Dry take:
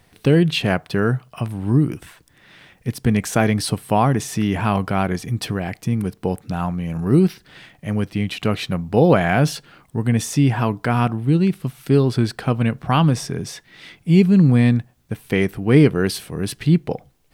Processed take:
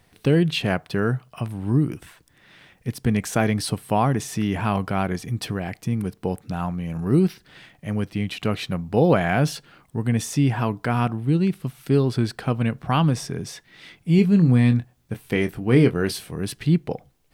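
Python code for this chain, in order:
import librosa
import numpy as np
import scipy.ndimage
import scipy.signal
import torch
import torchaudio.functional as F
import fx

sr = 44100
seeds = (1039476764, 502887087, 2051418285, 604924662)

y = fx.doubler(x, sr, ms=24.0, db=-10, at=(14.16, 16.36))
y = F.gain(torch.from_numpy(y), -3.5).numpy()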